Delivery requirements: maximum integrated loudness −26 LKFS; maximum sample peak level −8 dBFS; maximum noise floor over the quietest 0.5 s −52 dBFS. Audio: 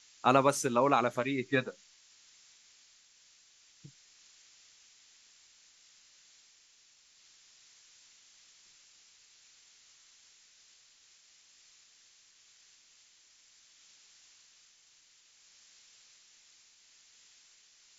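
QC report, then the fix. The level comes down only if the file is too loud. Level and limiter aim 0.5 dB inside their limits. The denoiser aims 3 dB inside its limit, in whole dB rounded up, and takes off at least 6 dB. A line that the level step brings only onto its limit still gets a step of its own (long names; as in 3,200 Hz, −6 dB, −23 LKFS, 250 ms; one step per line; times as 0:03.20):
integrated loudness −29.0 LKFS: in spec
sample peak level −10.5 dBFS: in spec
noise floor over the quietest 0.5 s −64 dBFS: in spec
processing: no processing needed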